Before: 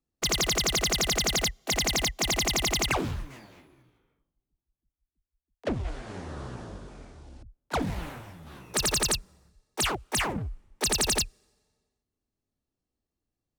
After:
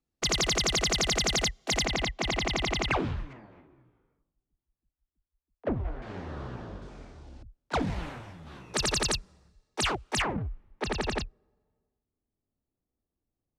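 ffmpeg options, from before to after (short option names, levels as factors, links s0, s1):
-af "asetnsamples=n=441:p=0,asendcmd='1.85 lowpass f 3400;3.33 lowpass f 1500;6.02 lowpass f 3700;6.82 lowpass f 6400;10.22 lowpass f 2400;11.22 lowpass f 1100',lowpass=7400"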